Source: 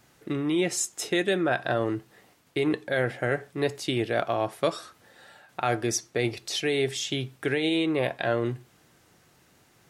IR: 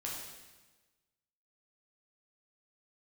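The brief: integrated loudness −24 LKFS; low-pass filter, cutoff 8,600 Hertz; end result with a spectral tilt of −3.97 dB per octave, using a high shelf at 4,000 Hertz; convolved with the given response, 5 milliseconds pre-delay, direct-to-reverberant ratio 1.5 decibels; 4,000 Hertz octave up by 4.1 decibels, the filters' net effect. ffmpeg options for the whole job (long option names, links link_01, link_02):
-filter_complex "[0:a]lowpass=8600,highshelf=frequency=4000:gain=-5,equalizer=frequency=4000:width_type=o:gain=8,asplit=2[link_01][link_02];[1:a]atrim=start_sample=2205,adelay=5[link_03];[link_02][link_03]afir=irnorm=-1:irlink=0,volume=-2.5dB[link_04];[link_01][link_04]amix=inputs=2:normalize=0,volume=1dB"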